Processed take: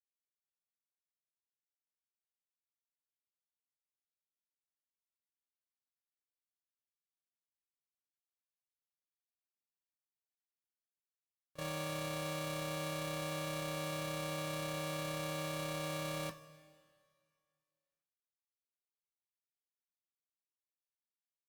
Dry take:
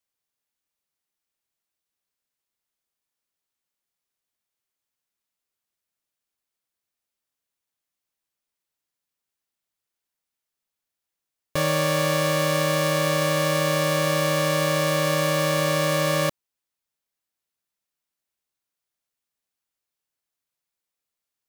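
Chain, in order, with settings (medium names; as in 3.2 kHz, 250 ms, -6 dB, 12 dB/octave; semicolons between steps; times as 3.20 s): gate -17 dBFS, range -57 dB; waveshaping leveller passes 1; peak limiter -51 dBFS, peak gain reduction 9.5 dB; two-slope reverb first 0.2 s, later 2.1 s, from -19 dB, DRR 5 dB; trim +18 dB; Opus 256 kbps 48 kHz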